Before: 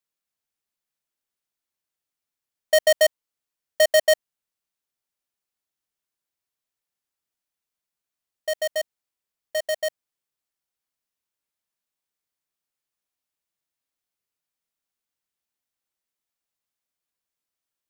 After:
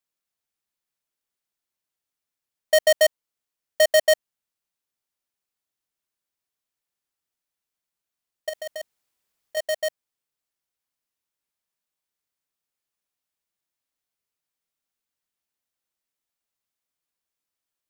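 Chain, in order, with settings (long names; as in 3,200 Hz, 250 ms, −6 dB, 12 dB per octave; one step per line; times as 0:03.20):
0:08.49–0:09.57: compressor whose output falls as the input rises −32 dBFS, ratio −1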